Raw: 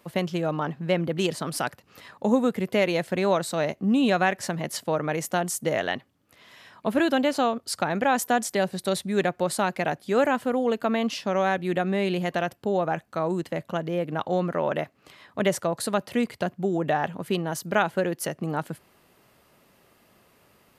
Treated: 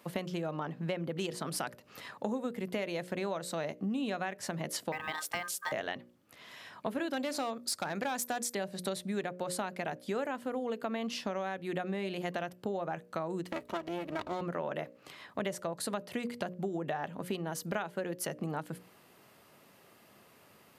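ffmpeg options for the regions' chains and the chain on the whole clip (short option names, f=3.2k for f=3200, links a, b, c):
-filter_complex "[0:a]asettb=1/sr,asplit=3[a][b][c];[a]atrim=end=4.924[d];[b]atrim=start=4.92:end=5.72,asetpts=PTS-STARTPTS,afade=t=in:d=0.004:c=qsin,afade=t=out:st=0.796:d=0.004:c=qsin,equalizer=f=340:w=1.3:g=-7,acrusher=bits=7:mode=log:mix=0:aa=0.000001,aeval=exprs='val(0)*sin(2*PI*1400*n/s)':c=same[e];[c]atrim=start=5.716[f];[d][e]acrossfade=d=0.004:c1=hsin:c2=qsin[g];[g][f]acrossfade=d=0.004:c1=qsin:c2=hsin,asettb=1/sr,asplit=3[h][i][j];[h]atrim=end=7.134[k];[i]atrim=start=7.13:end=8.55,asetpts=PTS-STARTPTS,afade=t=in:d=0.004:c=qsin,afade=t=out:st=1.416:d=0.004:c=qsin,highshelf=f=2k:g=7,bandreject=f=3k:w=8.4,asoftclip=type=hard:threshold=-16.5dB[l];[j]atrim=start=8.546[m];[k][l]acrossfade=d=0.004:c1=hsin:c2=qsin[n];[n][m]acrossfade=d=0.004:c1=qsin:c2=hsin,asettb=1/sr,asplit=3[o][p][q];[o]atrim=end=13.474[r];[p]atrim=start=13.47:end=14.41,asetpts=PTS-STARTPTS,afade=t=in:d=0.004:c=qsin,afade=t=out:st=0.936:d=0.004:c=qsin,highpass=f=60:w=0.5412,highpass=f=60:w=1.3066,aecho=1:1:3.1:0.77,atrim=end_sample=41454,aeval=exprs='max(val(0),0)':c=same[s];[q]atrim=start=14.406[t];[r][s]acrossfade=d=0.004:c1=hsin:c2=qsin[u];[u][t]acrossfade=d=0.004:c1=qsin:c2=hsin,highpass=100,bandreject=f=60:t=h:w=6,bandreject=f=120:t=h:w=6,bandreject=f=180:t=h:w=6,bandreject=f=240:t=h:w=6,bandreject=f=300:t=h:w=6,bandreject=f=360:t=h:w=6,bandreject=f=420:t=h:w=6,bandreject=f=480:t=h:w=6,bandreject=f=540:t=h:w=6,bandreject=f=600:t=h:w=6,acompressor=threshold=-33dB:ratio=5"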